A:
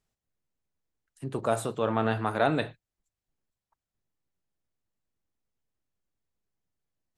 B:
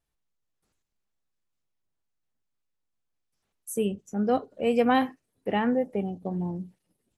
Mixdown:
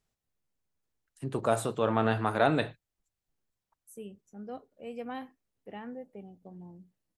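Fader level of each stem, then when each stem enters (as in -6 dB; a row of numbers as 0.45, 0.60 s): 0.0, -17.0 dB; 0.00, 0.20 s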